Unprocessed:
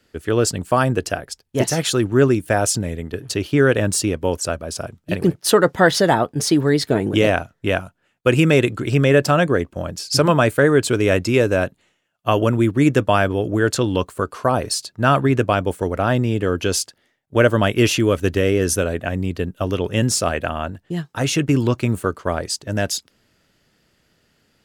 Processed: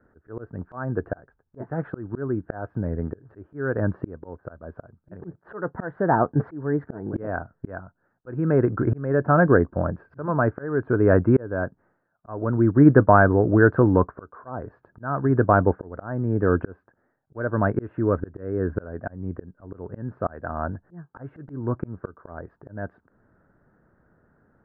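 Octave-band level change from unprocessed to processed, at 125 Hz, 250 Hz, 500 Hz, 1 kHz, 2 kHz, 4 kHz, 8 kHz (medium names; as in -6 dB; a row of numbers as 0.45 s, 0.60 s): -4.0 dB, -4.0 dB, -6.0 dB, -4.0 dB, -7.0 dB, under -40 dB, under -40 dB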